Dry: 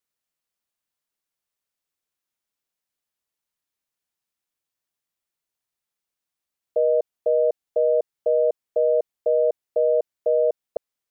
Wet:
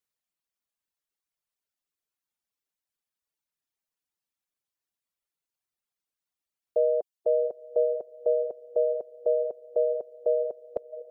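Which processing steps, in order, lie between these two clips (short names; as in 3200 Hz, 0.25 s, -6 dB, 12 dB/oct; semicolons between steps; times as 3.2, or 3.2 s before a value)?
diffused feedback echo 0.758 s, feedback 46%, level -10 dB; reverb removal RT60 1.6 s; gain -2.5 dB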